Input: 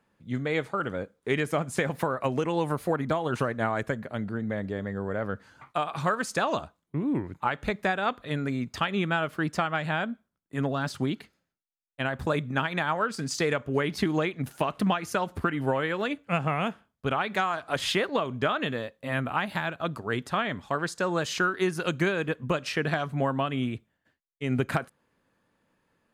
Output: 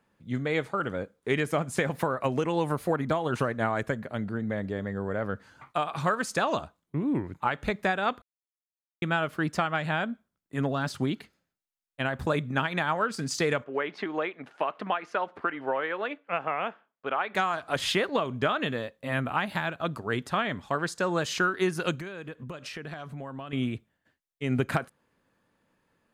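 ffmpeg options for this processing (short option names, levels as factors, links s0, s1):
-filter_complex "[0:a]asettb=1/sr,asplit=3[s0][s1][s2];[s0]atrim=end=13.644[s3];[s1]atrim=start=13.64:end=17.35,asetpts=PTS-STARTPTS,afade=t=in:d=0.004:c=qsin,afade=t=out:st=3.706:d=0.004:c=qsin,highpass=440,lowpass=2500[s4];[s2]atrim=start=17.346[s5];[s3][s4]acrossfade=d=0.004:c1=hsin:c2=qsin[s6];[s6][s5]acrossfade=d=0.004:c1=qsin:c2=hsin,asettb=1/sr,asplit=3[s7][s8][s9];[s7]atrim=end=21.954[s10];[s8]atrim=start=21.95:end=23.53,asetpts=PTS-STARTPTS,afade=t=in:d=0.004:c=qsin,afade=t=out:st=1.576:d=0.004:c=qsin,acompressor=threshold=0.0141:ratio=4:attack=3.2:release=140:knee=1:detection=peak[s11];[s9]atrim=start=23.526[s12];[s10][s11]acrossfade=d=0.004:c1=hsin:c2=qsin[s13];[s13][s12]acrossfade=d=0.004:c1=qsin:c2=hsin,asplit=3[s14][s15][s16];[s14]atrim=end=8.22,asetpts=PTS-STARTPTS,afade=t=out:st=8.216:d=0.004:c=hsin[s17];[s15]atrim=start=8.22:end=9.02,asetpts=PTS-STARTPTS,volume=0[s18];[s16]atrim=start=9.02,asetpts=PTS-STARTPTS,afade=t=in:d=0.004:c=hsin[s19];[s17][s18][s19]concat=n=3:v=0:a=1"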